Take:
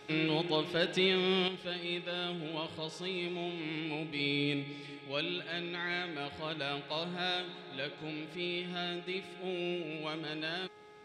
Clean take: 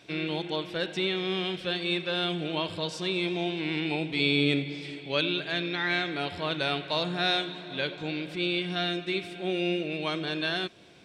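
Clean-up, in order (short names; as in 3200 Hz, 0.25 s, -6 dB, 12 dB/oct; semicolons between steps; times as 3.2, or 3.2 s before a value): de-hum 420.2 Hz, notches 5; gain 0 dB, from 1.48 s +8 dB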